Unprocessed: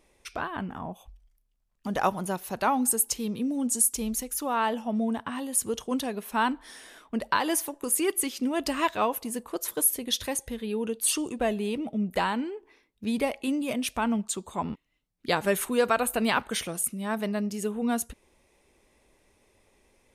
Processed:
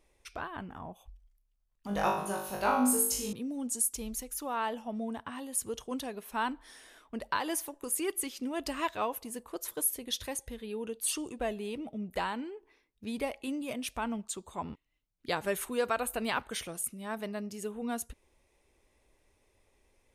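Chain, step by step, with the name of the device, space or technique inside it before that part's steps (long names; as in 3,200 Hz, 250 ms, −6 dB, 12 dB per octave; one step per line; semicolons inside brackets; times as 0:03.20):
low shelf boost with a cut just above (low-shelf EQ 93 Hz +6 dB; parametric band 200 Hz −4.5 dB 0.78 octaves)
0:01.87–0:03.33: flutter between parallel walls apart 3.4 metres, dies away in 0.62 s
level −6.5 dB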